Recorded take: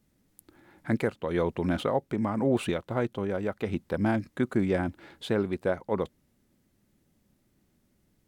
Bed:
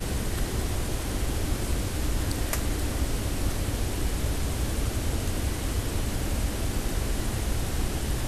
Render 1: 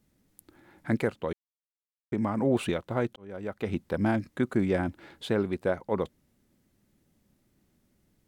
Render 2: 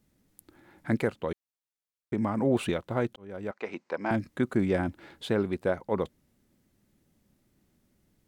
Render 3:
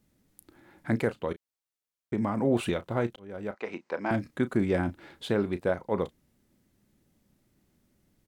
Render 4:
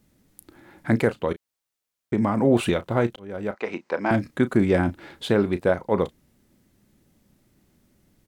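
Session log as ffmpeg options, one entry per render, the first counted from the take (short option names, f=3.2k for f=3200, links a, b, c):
-filter_complex "[0:a]asplit=4[a][b][c][d];[a]atrim=end=1.33,asetpts=PTS-STARTPTS,afade=t=out:st=1.326:d=0.004:c=hsin[e];[b]atrim=start=1.33:end=2.12,asetpts=PTS-STARTPTS,volume=0[f];[c]atrim=start=2.12:end=3.16,asetpts=PTS-STARTPTS,afade=t=in:d=0.004:c=hsin,afade=t=out:st=1.036:d=0.004:c=hsin[g];[d]atrim=start=3.16,asetpts=PTS-STARTPTS,afade=t=in:d=0.52[h];[e][f][g][h]concat=n=4:v=0:a=1"
-filter_complex "[0:a]asettb=1/sr,asplit=3[a][b][c];[a]atrim=end=3.514[d];[b]atrim=start=3.51:end=4.11,asetpts=PTS-STARTPTS,afade=t=in:d=0.004:c=qsin,afade=t=out:st=0.596:d=0.004:c=qsin,highpass=430,equalizer=f=990:t=q:w=4:g=5,equalizer=f=2.3k:t=q:w=4:g=4,equalizer=f=3.4k:t=q:w=4:g=-8,lowpass=f=6.6k:w=0.5412,lowpass=f=6.6k:w=1.3066[e];[c]atrim=start=4.106[f];[d][e]acrossfade=d=0.004:c1=hsin:c2=qsin[g];[g][f]acrossfade=d=0.004:c1=qsin:c2=hsin"
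-filter_complex "[0:a]asplit=2[a][b];[b]adelay=34,volume=-13.5dB[c];[a][c]amix=inputs=2:normalize=0"
-af "volume=6.5dB"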